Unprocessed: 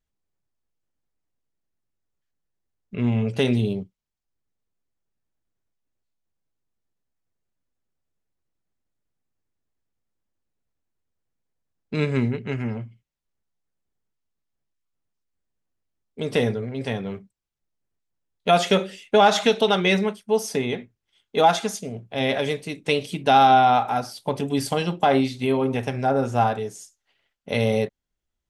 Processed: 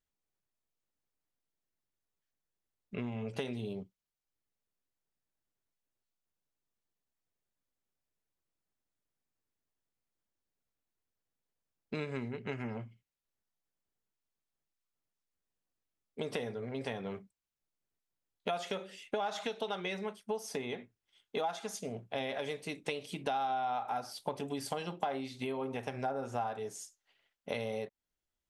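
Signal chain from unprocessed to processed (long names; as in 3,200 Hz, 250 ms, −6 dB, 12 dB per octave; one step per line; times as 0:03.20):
low-shelf EQ 210 Hz −7 dB
downward compressor 10 to 1, threshold −31 dBFS, peak gain reduction 19.5 dB
dynamic equaliser 870 Hz, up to +4 dB, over −47 dBFS, Q 0.84
level −4 dB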